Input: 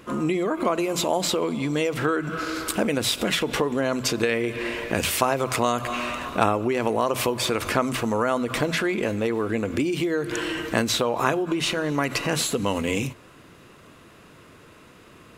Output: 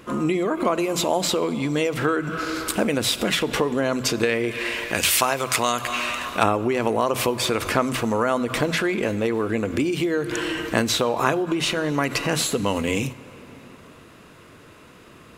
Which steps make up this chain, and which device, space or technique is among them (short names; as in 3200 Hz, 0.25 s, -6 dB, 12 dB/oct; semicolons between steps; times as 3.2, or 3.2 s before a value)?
4.51–6.43 tilt shelf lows -5.5 dB, about 1100 Hz; compressed reverb return (on a send at -10.5 dB: reverb RT60 2.8 s, pre-delay 26 ms + compressor, threshold -31 dBFS, peak gain reduction 12 dB); on the sum: gain +1.5 dB